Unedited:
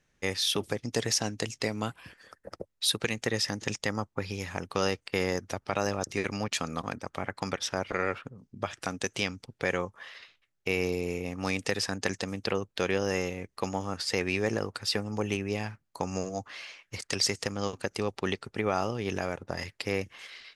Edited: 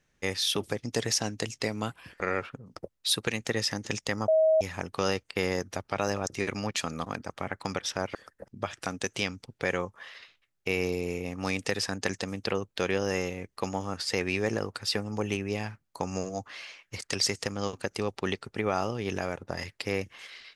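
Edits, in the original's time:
2.20–2.53 s: swap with 7.92–8.48 s
4.05–4.38 s: bleep 635 Hz -18.5 dBFS

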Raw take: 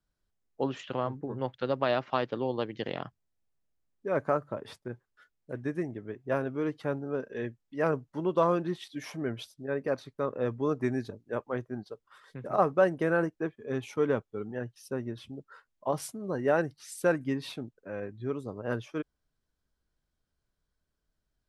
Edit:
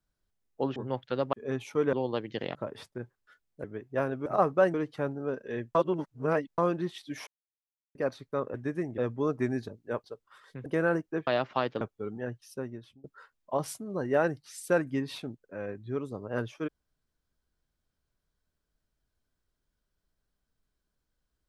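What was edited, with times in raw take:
0.76–1.27 s: delete
1.84–2.38 s: swap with 13.55–14.15 s
3.00–4.45 s: delete
5.54–5.98 s: move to 10.40 s
7.61–8.44 s: reverse
9.13–9.81 s: mute
11.46–11.84 s: delete
12.46–12.94 s: move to 6.60 s
14.78–15.38 s: fade out, to -21.5 dB

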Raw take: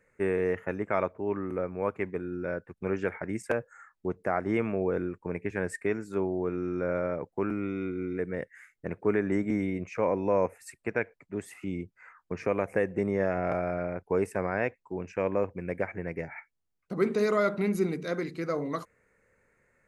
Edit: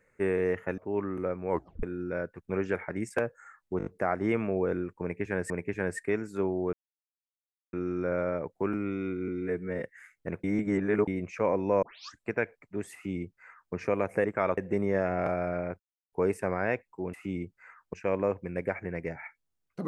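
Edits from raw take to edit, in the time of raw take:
0.78–1.11 s: move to 12.83 s
1.83 s: tape stop 0.33 s
4.11 s: stutter 0.02 s, 5 plays
5.27–5.75 s: loop, 2 plays
6.50 s: insert silence 1.00 s
8.05–8.42 s: stretch 1.5×
9.02–9.66 s: reverse
10.41 s: tape start 0.41 s
11.52–12.32 s: copy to 15.06 s
14.05 s: insert silence 0.33 s

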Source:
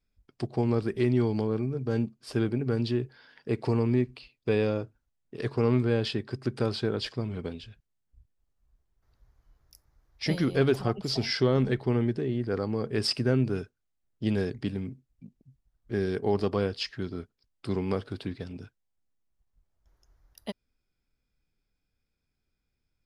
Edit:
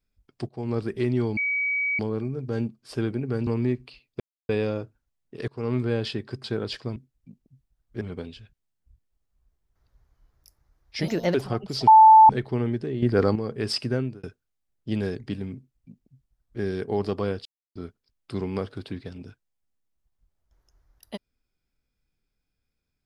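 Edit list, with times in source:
0.49–0.78 s: fade in, from -17.5 dB
1.37 s: add tone 2.27 kHz -22.5 dBFS 0.62 s
2.85–3.76 s: delete
4.49 s: insert silence 0.29 s
5.48–5.92 s: fade in equal-power, from -22.5 dB
6.44–6.76 s: delete
10.35–10.69 s: speed 129%
11.22–11.64 s: bleep 878 Hz -8 dBFS
12.37–12.70 s: gain +9 dB
13.27–13.58 s: fade out
14.91–15.96 s: copy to 7.28 s
16.80–17.10 s: mute

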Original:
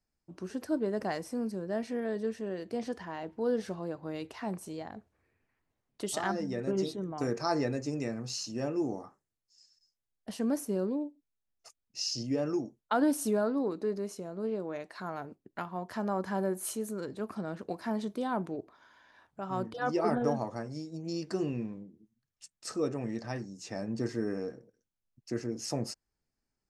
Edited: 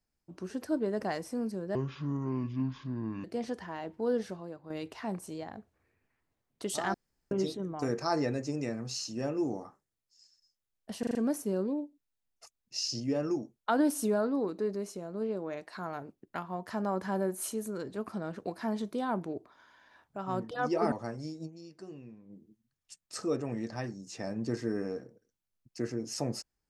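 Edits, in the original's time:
1.75–2.63 s: speed 59%
3.57–4.09 s: fade out quadratic, to -8 dB
6.33–6.70 s: room tone
10.38 s: stutter 0.04 s, 5 plays
20.15–20.44 s: delete
20.98–21.85 s: dip -14 dB, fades 0.32 s exponential

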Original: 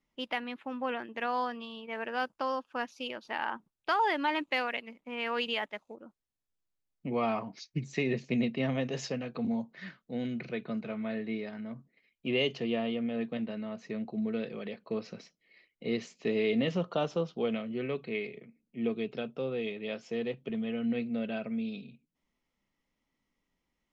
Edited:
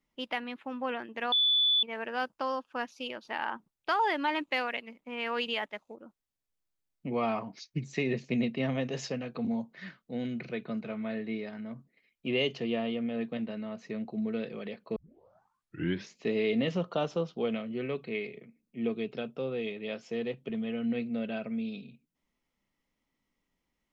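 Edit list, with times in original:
1.32–1.83 s: bleep 3.47 kHz -22 dBFS
14.96 s: tape start 1.22 s

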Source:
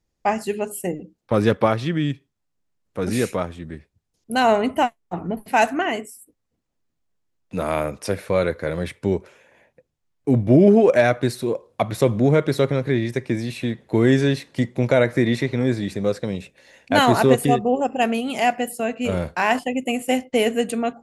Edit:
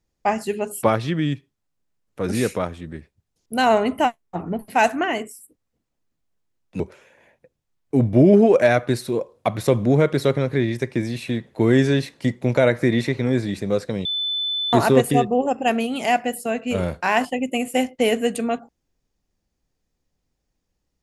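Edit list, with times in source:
0.83–1.61 s: delete
7.58–9.14 s: delete
16.39–17.07 s: bleep 3.51 kHz -21.5 dBFS

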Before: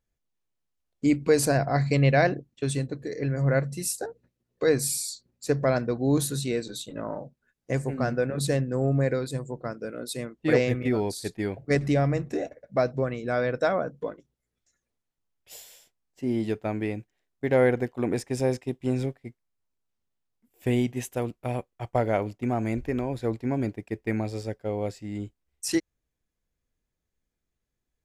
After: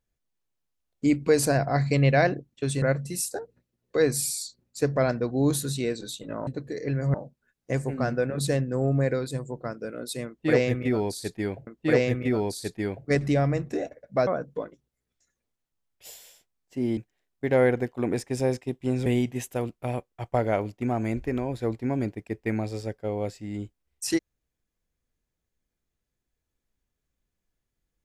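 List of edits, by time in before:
2.82–3.49 s: move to 7.14 s
10.27–11.67 s: loop, 2 plays
12.87–13.73 s: delete
16.43–16.97 s: delete
19.06–20.67 s: delete

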